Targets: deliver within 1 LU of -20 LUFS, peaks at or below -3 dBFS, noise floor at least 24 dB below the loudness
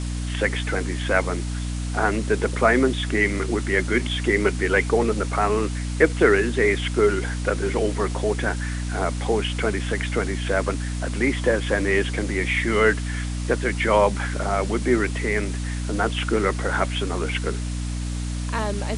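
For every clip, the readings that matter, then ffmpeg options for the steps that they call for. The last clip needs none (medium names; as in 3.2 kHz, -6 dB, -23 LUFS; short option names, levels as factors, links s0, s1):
hum 60 Hz; highest harmonic 300 Hz; hum level -25 dBFS; noise floor -28 dBFS; noise floor target -47 dBFS; loudness -23.0 LUFS; peak level -3.0 dBFS; loudness target -20.0 LUFS
-> -af "bandreject=f=60:t=h:w=6,bandreject=f=120:t=h:w=6,bandreject=f=180:t=h:w=6,bandreject=f=240:t=h:w=6,bandreject=f=300:t=h:w=6"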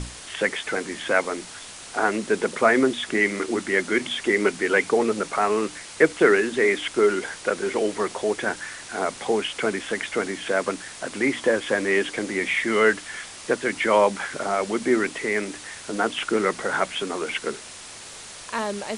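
hum not found; noise floor -41 dBFS; noise floor target -48 dBFS
-> -af "afftdn=nr=7:nf=-41"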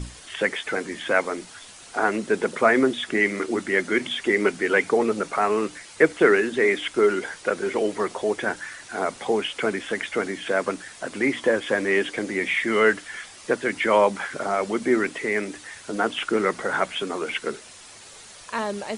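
noise floor -45 dBFS; noise floor target -48 dBFS
-> -af "afftdn=nr=6:nf=-45"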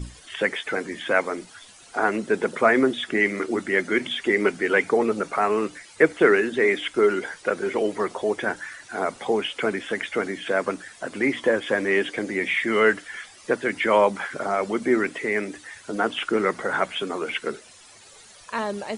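noise floor -49 dBFS; loudness -23.5 LUFS; peak level -4.0 dBFS; loudness target -20.0 LUFS
-> -af "volume=1.5,alimiter=limit=0.708:level=0:latency=1"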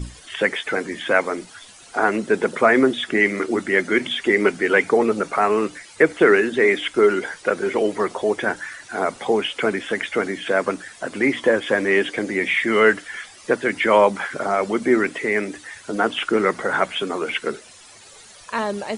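loudness -20.5 LUFS; peak level -3.0 dBFS; noise floor -45 dBFS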